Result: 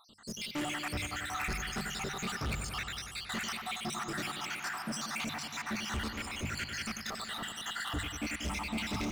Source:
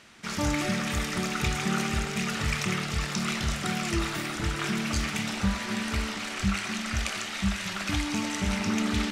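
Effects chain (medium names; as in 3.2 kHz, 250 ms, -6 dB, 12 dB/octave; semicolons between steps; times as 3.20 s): random holes in the spectrogram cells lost 76%; hum notches 50/100/150/200 Hz; in parallel at -10 dB: bit crusher 7-bit; on the sum: saturation -31.5 dBFS, distortion -8 dB; feedback echo behind a low-pass 94 ms, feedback 79%, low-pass 3.3 kHz, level -8 dB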